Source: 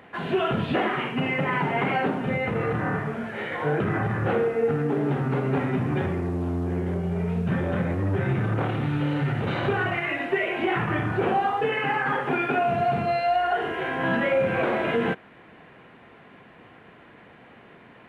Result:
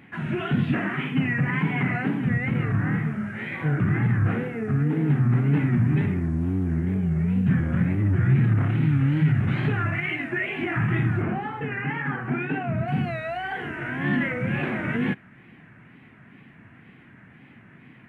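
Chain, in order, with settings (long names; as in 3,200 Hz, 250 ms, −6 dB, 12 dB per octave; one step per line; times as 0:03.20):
octave-band graphic EQ 125/250/500/1,000/2,000/4,000 Hz +9/+6/−11/−5/+6/−8 dB
tape wow and flutter 140 cents
0:11.22–0:12.88: high-shelf EQ 3,300 Hz −11.5 dB
level −2 dB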